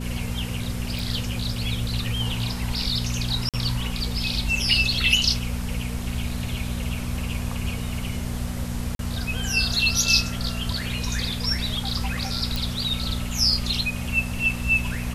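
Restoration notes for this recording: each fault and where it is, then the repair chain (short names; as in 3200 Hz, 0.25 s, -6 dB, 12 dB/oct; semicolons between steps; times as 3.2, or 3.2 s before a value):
hum 60 Hz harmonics 4 -30 dBFS
0.99 pop
3.49–3.54 gap 47 ms
8.95–8.99 gap 42 ms
12.56 pop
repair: de-click; de-hum 60 Hz, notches 4; interpolate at 3.49, 47 ms; interpolate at 8.95, 42 ms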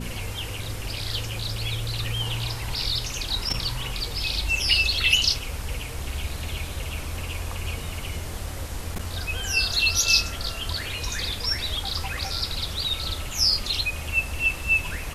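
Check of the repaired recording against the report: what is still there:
none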